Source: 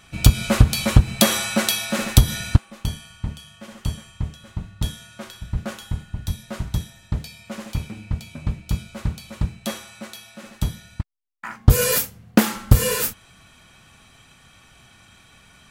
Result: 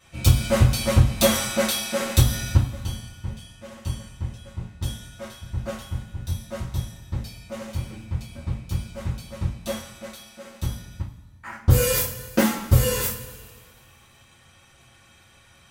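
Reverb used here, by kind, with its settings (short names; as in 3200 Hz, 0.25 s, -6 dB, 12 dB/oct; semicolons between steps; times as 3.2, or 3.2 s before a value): two-slope reverb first 0.28 s, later 1.8 s, from -18 dB, DRR -10 dB; gain -12.5 dB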